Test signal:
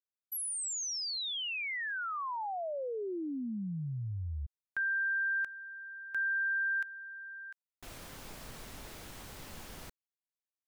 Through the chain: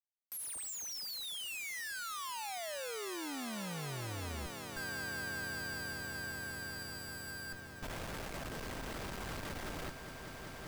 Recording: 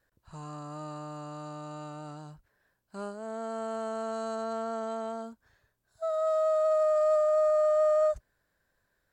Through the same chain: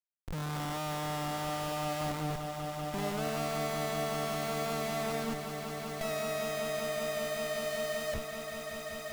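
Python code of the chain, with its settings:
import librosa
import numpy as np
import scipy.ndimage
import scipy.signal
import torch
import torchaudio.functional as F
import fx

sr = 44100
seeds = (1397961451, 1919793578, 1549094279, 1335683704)

y = fx.schmitt(x, sr, flips_db=-48.0)
y = fx.echo_swell(y, sr, ms=193, loudest=8, wet_db=-14)
y = y * librosa.db_to_amplitude(-5.0)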